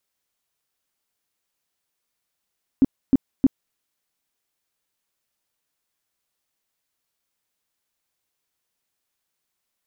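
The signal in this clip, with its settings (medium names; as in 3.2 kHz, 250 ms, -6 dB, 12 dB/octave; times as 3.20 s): tone bursts 267 Hz, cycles 7, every 0.31 s, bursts 3, -10 dBFS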